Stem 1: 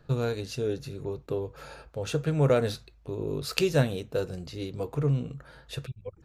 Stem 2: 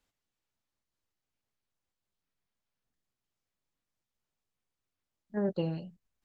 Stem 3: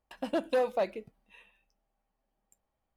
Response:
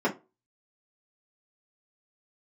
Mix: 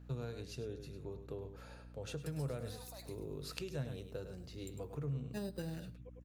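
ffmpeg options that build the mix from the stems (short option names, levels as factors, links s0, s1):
-filter_complex "[0:a]volume=0.266,asplit=2[s0][s1];[s1]volume=0.282[s2];[1:a]highshelf=f=2000:g=11.5,acrusher=samples=10:mix=1:aa=0.000001,volume=0.631,asplit=3[s3][s4][s5];[s4]volume=0.0794[s6];[2:a]highpass=790,alimiter=level_in=3.35:limit=0.0631:level=0:latency=1:release=16,volume=0.299,aexciter=amount=13.5:drive=3.8:freq=4200,adelay=2150,volume=0.237,asplit=2[s7][s8];[s8]volume=0.355[s9];[s5]apad=whole_len=275329[s10];[s0][s10]sidechaincompress=threshold=0.0112:ratio=8:attack=7.1:release=1210[s11];[s2][s6][s9]amix=inputs=3:normalize=0,aecho=0:1:102:1[s12];[s11][s3][s7][s12]amix=inputs=4:normalize=0,acrossover=split=130[s13][s14];[s14]acompressor=threshold=0.00891:ratio=5[s15];[s13][s15]amix=inputs=2:normalize=0,aeval=exprs='val(0)+0.00224*(sin(2*PI*60*n/s)+sin(2*PI*2*60*n/s)/2+sin(2*PI*3*60*n/s)/3+sin(2*PI*4*60*n/s)/4+sin(2*PI*5*60*n/s)/5)':c=same"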